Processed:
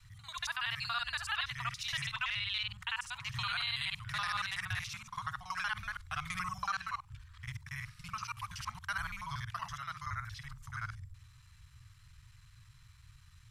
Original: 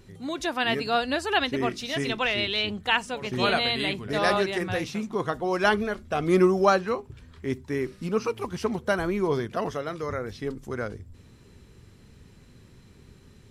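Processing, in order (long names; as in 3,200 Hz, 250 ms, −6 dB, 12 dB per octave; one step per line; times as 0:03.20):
reversed piece by piece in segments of 47 ms
elliptic band-stop filter 120–1,100 Hz, stop band 60 dB
brickwall limiter −22 dBFS, peak gain reduction 11 dB
level −3 dB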